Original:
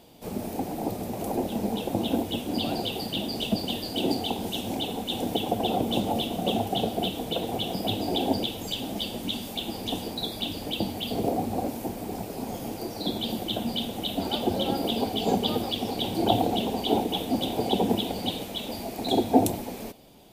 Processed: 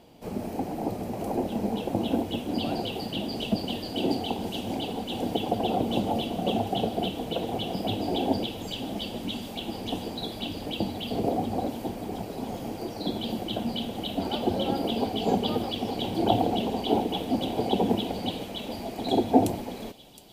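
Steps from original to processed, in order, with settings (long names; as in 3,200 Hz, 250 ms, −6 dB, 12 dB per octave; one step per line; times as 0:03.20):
high-shelf EQ 5,900 Hz −10 dB
notch filter 3,600 Hz, Q 14
on a send: delay with a high-pass on its return 716 ms, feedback 74%, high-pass 3,800 Hz, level −12.5 dB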